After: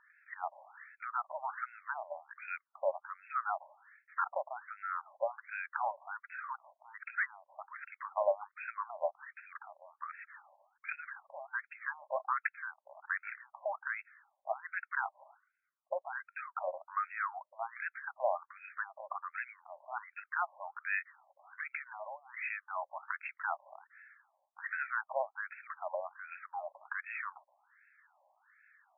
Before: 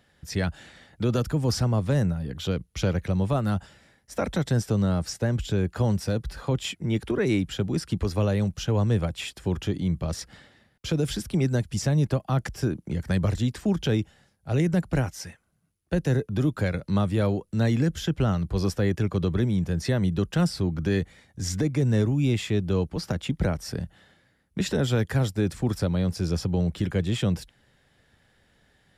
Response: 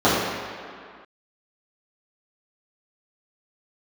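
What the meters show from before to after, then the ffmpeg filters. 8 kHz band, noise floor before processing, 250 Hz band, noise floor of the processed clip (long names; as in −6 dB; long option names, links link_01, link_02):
below −40 dB, −66 dBFS, below −40 dB, −84 dBFS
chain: -af "afftfilt=real='re*between(b*sr/1024,760*pow(1900/760,0.5+0.5*sin(2*PI*1.3*pts/sr))/1.41,760*pow(1900/760,0.5+0.5*sin(2*PI*1.3*pts/sr))*1.41)':imag='im*between(b*sr/1024,760*pow(1900/760,0.5+0.5*sin(2*PI*1.3*pts/sr))/1.41,760*pow(1900/760,0.5+0.5*sin(2*PI*1.3*pts/sr))*1.41)':win_size=1024:overlap=0.75,volume=3.5dB"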